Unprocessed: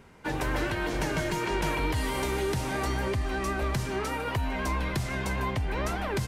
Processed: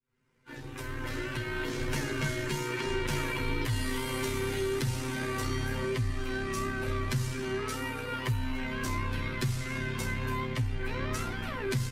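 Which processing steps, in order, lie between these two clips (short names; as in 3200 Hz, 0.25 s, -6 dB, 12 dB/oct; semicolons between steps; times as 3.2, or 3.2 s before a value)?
opening faded in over 0.91 s; granular stretch 1.9×, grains 33 ms; bell 720 Hz -13 dB 0.67 oct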